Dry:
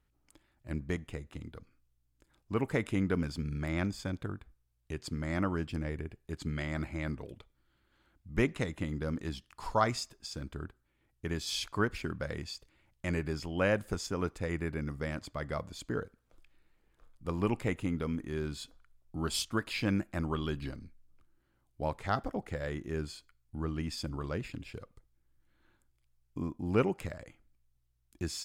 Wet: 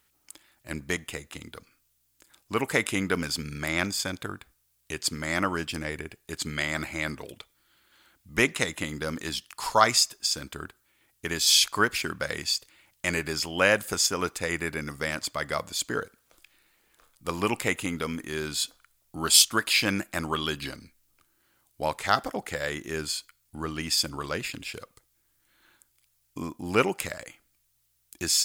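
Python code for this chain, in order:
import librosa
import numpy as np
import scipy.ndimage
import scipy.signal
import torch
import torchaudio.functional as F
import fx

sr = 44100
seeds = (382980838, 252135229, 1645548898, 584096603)

y = fx.tilt_eq(x, sr, slope=3.5)
y = y * 10.0 ** (8.5 / 20.0)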